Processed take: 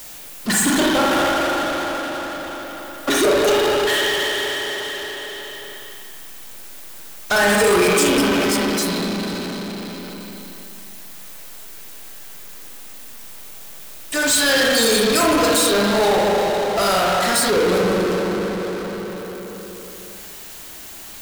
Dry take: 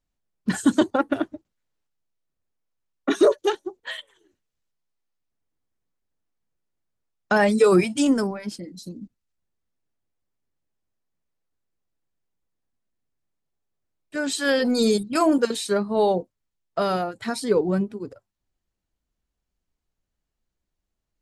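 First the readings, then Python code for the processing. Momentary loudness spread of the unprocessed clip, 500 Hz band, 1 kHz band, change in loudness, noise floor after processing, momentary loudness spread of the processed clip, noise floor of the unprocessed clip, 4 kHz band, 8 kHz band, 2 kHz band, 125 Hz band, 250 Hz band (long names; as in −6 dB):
16 LU, +5.0 dB, +8.5 dB, +4.0 dB, −37 dBFS, 22 LU, −82 dBFS, +13.5 dB, +15.0 dB, +11.0 dB, +4.0 dB, +2.5 dB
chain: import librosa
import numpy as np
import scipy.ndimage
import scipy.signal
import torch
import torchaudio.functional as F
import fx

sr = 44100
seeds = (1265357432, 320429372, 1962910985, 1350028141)

y = fx.riaa(x, sr, side='recording')
y = fx.rev_spring(y, sr, rt60_s=2.2, pass_ms=(39, 59), chirp_ms=25, drr_db=-4.0)
y = fx.power_curve(y, sr, exponent=0.35)
y = y * 10.0 ** (-6.5 / 20.0)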